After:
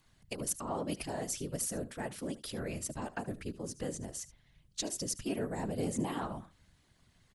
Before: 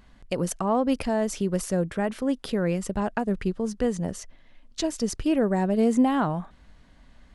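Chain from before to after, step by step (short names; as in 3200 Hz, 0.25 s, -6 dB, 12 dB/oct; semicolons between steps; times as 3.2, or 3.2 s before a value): pre-emphasis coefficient 0.8; echo 75 ms -17 dB; whisperiser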